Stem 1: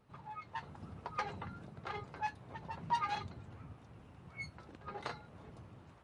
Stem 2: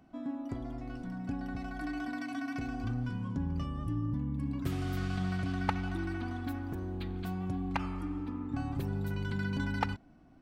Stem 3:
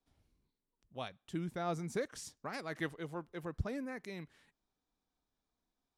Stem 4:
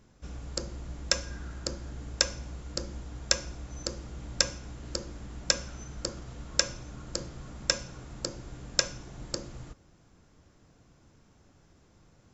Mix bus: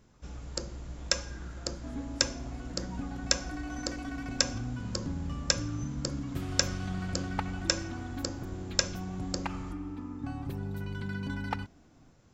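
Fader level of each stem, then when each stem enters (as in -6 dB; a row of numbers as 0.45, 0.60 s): -18.5, -2.0, -18.0, -1.5 dB; 0.00, 1.70, 0.00, 0.00 s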